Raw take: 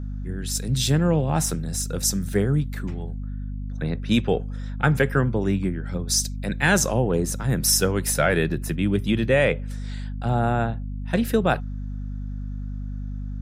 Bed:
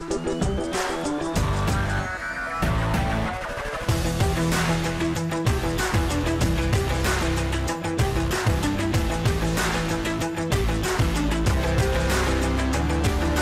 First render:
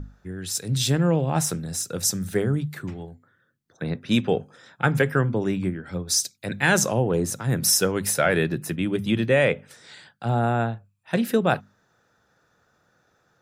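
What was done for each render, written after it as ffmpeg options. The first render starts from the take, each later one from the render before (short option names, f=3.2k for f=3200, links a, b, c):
-af "bandreject=f=50:t=h:w=6,bandreject=f=100:t=h:w=6,bandreject=f=150:t=h:w=6,bandreject=f=200:t=h:w=6,bandreject=f=250:t=h:w=6"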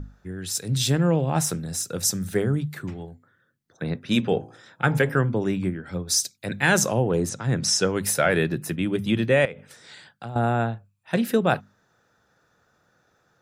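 -filter_complex "[0:a]asettb=1/sr,asplit=3[a][b][c];[a]atrim=end=4.064[d];[b]atrim=start=4.06:end=5.18,asetpts=PTS-STARTPTS,afade=t=in:d=0.004:c=qsin,afade=t=out:st=1.116:d=0.004:c=qsin,bandreject=f=56.22:t=h:w=4,bandreject=f=112.44:t=h:w=4,bandreject=f=168.66:t=h:w=4,bandreject=f=224.88:t=h:w=4,bandreject=f=281.1:t=h:w=4,bandreject=f=337.32:t=h:w=4,bandreject=f=393.54:t=h:w=4,bandreject=f=449.76:t=h:w=4,bandreject=f=505.98:t=h:w=4,bandreject=f=562.2:t=h:w=4,bandreject=f=618.42:t=h:w=4,bandreject=f=674.64:t=h:w=4,bandreject=f=730.86:t=h:w=4,bandreject=f=787.08:t=h:w=4,bandreject=f=843.3:t=h:w=4,bandreject=f=899.52:t=h:w=4,bandreject=f=955.74:t=h:w=4,bandreject=f=1.01196k:t=h:w=4,bandreject=f=1.06818k:t=h:w=4[e];[c]atrim=start=5.176[f];[d][e]acrossfade=d=0.004:c1=hsin:c2=qsin[g];[g][f]acrossfade=d=0.004:c1=qsin:c2=hsin,asettb=1/sr,asplit=3[h][i][j];[h]atrim=end=7.294[k];[i]atrim=start=7.29:end=7.92,asetpts=PTS-STARTPTS,afade=t=in:d=0.004:c=qsin,afade=t=out:st=0.626:d=0.004:c=qsin,lowpass=f=7.6k:w=0.5412,lowpass=f=7.6k:w=1.3066[l];[j]atrim=start=7.916[m];[k][l]acrossfade=d=0.004:c1=hsin:c2=qsin[n];[n][m]acrossfade=d=0.004:c1=qsin:c2=hsin,asettb=1/sr,asplit=3[o][p][q];[o]atrim=end=9.454[r];[p]atrim=start=9.45:end=10.36,asetpts=PTS-STARTPTS,afade=t=in:d=0.004:c=qsin,afade=t=out:st=0.906:d=0.004:c=qsin,acompressor=threshold=-31dB:ratio=8:attack=3.2:release=140:knee=1:detection=peak[s];[q]atrim=start=10.356[t];[r][s]acrossfade=d=0.004:c1=hsin:c2=qsin[u];[u][t]acrossfade=d=0.004:c1=qsin:c2=hsin"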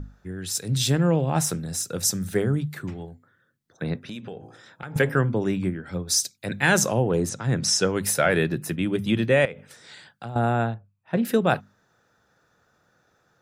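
-filter_complex "[0:a]asettb=1/sr,asplit=3[a][b][c];[a]atrim=end=4.014[d];[b]atrim=start=4.01:end=4.96,asetpts=PTS-STARTPTS,afade=t=in:d=0.004:c=qsin,afade=t=out:st=0.946:d=0.004:c=qsin,acompressor=threshold=-33dB:ratio=8:attack=3.2:release=140:knee=1:detection=peak[e];[c]atrim=start=4.956[f];[d][e]acrossfade=d=0.004:c1=hsin:c2=qsin[g];[g][f]acrossfade=d=0.004:c1=qsin:c2=hsin,asettb=1/sr,asplit=3[h][i][j];[h]atrim=end=10.744[k];[i]atrim=start=10.74:end=11.25,asetpts=PTS-STARTPTS,afade=t=in:d=0.004:c=qsin,afade=t=out:st=0.506:d=0.004:c=qsin,lowpass=f=1.1k:p=1[l];[j]atrim=start=11.246[m];[k][l]acrossfade=d=0.004:c1=hsin:c2=qsin[n];[n][m]acrossfade=d=0.004:c1=qsin:c2=hsin"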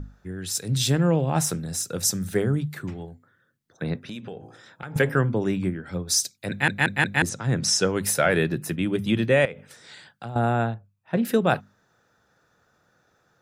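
-filter_complex "[0:a]asplit=5[a][b][c][d][e];[a]atrim=end=6.682[f];[b]atrim=start=6.498:end=6.682[g];[c]atrim=start=6.498:end=6.682[h];[d]atrim=start=6.498:end=6.682[i];[e]atrim=start=7.218[j];[f][g]acrossfade=d=0.004:c1=hsin:c2=hsin[k];[k][h]acrossfade=d=0.004:c1=hsin:c2=hsin[l];[l][i]acrossfade=d=0.004:c1=hsin:c2=hsin[m];[m][j]acrossfade=d=0.004:c1=hsin:c2=hsin"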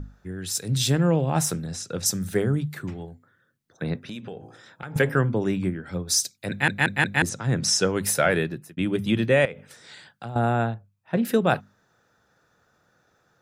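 -filter_complex "[0:a]asettb=1/sr,asplit=3[a][b][c];[a]atrim=end=1.664[d];[b]atrim=start=1.66:end=2.06,asetpts=PTS-STARTPTS,afade=t=in:d=0.004:c=qsin,afade=t=out:st=0.396:d=0.004:c=qsin,lowpass=5.5k[e];[c]atrim=start=2.056[f];[d][e]acrossfade=d=0.004:c1=hsin:c2=qsin[g];[g][f]acrossfade=d=0.004:c1=qsin:c2=hsin,asplit=2[h][i];[h]atrim=end=8.77,asetpts=PTS-STARTPTS,afade=t=out:st=8.29:d=0.48[j];[i]atrim=start=8.77,asetpts=PTS-STARTPTS,afade=t=in:d=0.004:c=hsin[k];[j][k]concat=n=2:v=0:a=1"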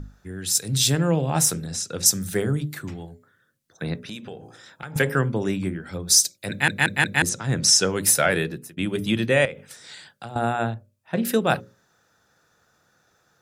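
-af "equalizer=f=11k:t=o:w=2.6:g=7.5,bandreject=f=60:t=h:w=6,bandreject=f=120:t=h:w=6,bandreject=f=180:t=h:w=6,bandreject=f=240:t=h:w=6,bandreject=f=300:t=h:w=6,bandreject=f=360:t=h:w=6,bandreject=f=420:t=h:w=6,bandreject=f=480:t=h:w=6,bandreject=f=540:t=h:w=6,bandreject=f=600:t=h:w=6"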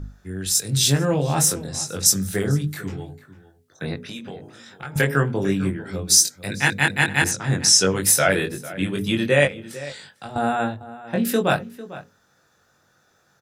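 -filter_complex "[0:a]asplit=2[a][b];[b]adelay=21,volume=-3dB[c];[a][c]amix=inputs=2:normalize=0,asplit=2[d][e];[e]adelay=449,volume=-16dB,highshelf=f=4k:g=-10.1[f];[d][f]amix=inputs=2:normalize=0"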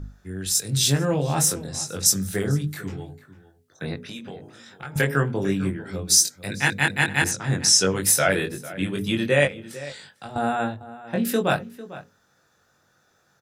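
-af "volume=-2dB"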